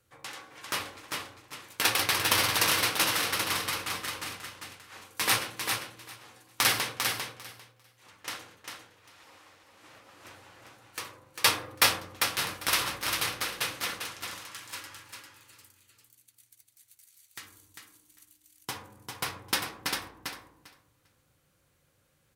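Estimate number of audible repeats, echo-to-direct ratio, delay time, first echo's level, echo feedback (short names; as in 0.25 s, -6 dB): 2, -5.0 dB, 0.398 s, -5.0 dB, 15%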